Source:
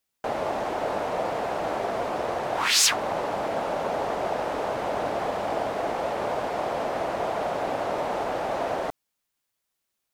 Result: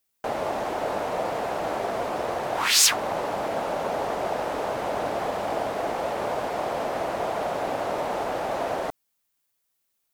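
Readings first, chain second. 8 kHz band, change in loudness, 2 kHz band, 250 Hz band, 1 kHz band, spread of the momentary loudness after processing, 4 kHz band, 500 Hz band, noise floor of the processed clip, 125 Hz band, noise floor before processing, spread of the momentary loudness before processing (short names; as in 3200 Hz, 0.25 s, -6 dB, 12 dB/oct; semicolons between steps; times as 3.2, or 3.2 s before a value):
+2.5 dB, +0.5 dB, 0.0 dB, 0.0 dB, 0.0 dB, 6 LU, +1.0 dB, 0.0 dB, -75 dBFS, 0.0 dB, -81 dBFS, 5 LU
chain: high shelf 9700 Hz +8 dB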